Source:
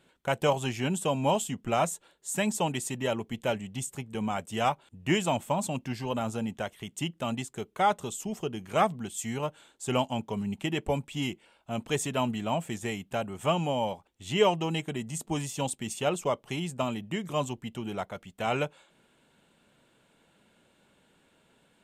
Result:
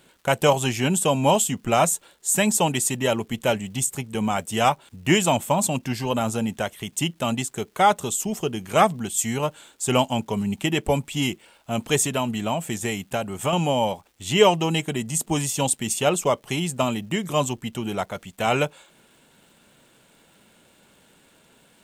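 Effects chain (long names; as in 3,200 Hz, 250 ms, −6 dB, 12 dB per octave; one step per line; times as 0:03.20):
0:11.98–0:13.53: downward compressor 3 to 1, threshold −29 dBFS, peak gain reduction 7 dB
high-shelf EQ 6,400 Hz +9 dB
surface crackle 560 per second −58 dBFS
level +7 dB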